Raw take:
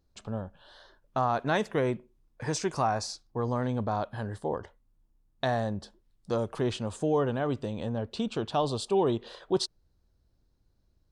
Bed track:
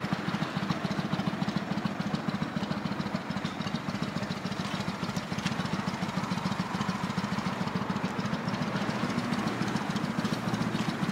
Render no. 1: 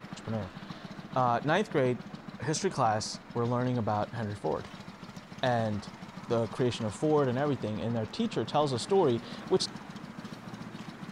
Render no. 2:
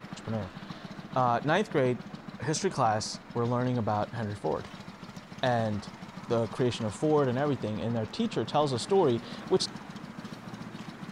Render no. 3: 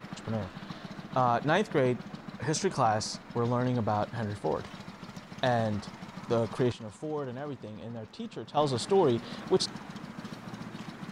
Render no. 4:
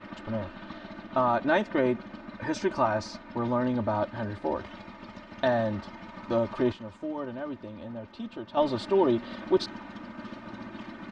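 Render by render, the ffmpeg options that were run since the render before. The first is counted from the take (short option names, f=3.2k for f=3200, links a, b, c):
-filter_complex "[1:a]volume=-12.5dB[a];[0:a][a]amix=inputs=2:normalize=0"
-af "volume=1dB"
-filter_complex "[0:a]asplit=3[a][b][c];[a]atrim=end=6.722[d];[b]atrim=start=6.718:end=8.572,asetpts=PTS-STARTPTS,volume=-9.5dB[e];[c]atrim=start=8.568[f];[d][e]acrossfade=d=0.004:c1=hsin:c2=hsin[g];[g][f]acrossfade=d=0.004:c1=hsin:c2=hsin"
-af "lowpass=3.2k,aecho=1:1:3.3:0.81"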